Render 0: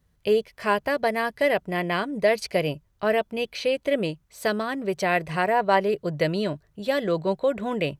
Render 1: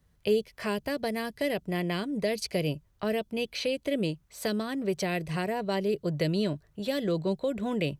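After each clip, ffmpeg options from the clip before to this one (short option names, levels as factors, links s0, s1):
-filter_complex "[0:a]acrossover=split=410|3000[s0][s1][s2];[s1]acompressor=threshold=0.0158:ratio=6[s3];[s0][s3][s2]amix=inputs=3:normalize=0"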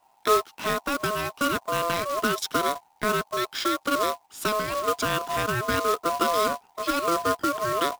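-af "aeval=exprs='val(0)*sin(2*PI*850*n/s)':c=same,acrusher=bits=2:mode=log:mix=0:aa=0.000001,volume=2.11"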